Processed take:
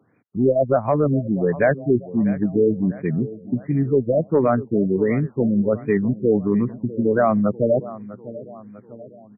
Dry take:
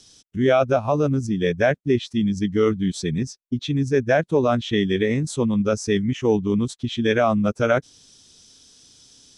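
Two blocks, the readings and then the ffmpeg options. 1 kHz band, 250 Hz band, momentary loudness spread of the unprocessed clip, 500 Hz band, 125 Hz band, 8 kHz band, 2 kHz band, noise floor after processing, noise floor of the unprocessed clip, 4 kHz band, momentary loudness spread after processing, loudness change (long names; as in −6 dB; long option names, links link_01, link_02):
−0.5 dB, +2.0 dB, 6 LU, +1.5 dB, +1.0 dB, below −40 dB, −4.5 dB, −49 dBFS, −58 dBFS, below −40 dB, 9 LU, +1.0 dB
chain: -filter_complex "[0:a]highpass=frequency=110:width=0.5412,highpass=frequency=110:width=1.3066,asplit=2[link_01][link_02];[link_02]adelay=647,lowpass=frequency=3300:poles=1,volume=-17dB,asplit=2[link_03][link_04];[link_04]adelay=647,lowpass=frequency=3300:poles=1,volume=0.52,asplit=2[link_05][link_06];[link_06]adelay=647,lowpass=frequency=3300:poles=1,volume=0.52,asplit=2[link_07][link_08];[link_08]adelay=647,lowpass=frequency=3300:poles=1,volume=0.52,asplit=2[link_09][link_10];[link_10]adelay=647,lowpass=frequency=3300:poles=1,volume=0.52[link_11];[link_03][link_05][link_07][link_09][link_11]amix=inputs=5:normalize=0[link_12];[link_01][link_12]amix=inputs=2:normalize=0,aexciter=amount=2.9:drive=8.2:freq=3300,acontrast=44,afftfilt=real='re*lt(b*sr/1024,630*pow(2500/630,0.5+0.5*sin(2*PI*1.4*pts/sr)))':imag='im*lt(b*sr/1024,630*pow(2500/630,0.5+0.5*sin(2*PI*1.4*pts/sr)))':win_size=1024:overlap=0.75,volume=-3.5dB"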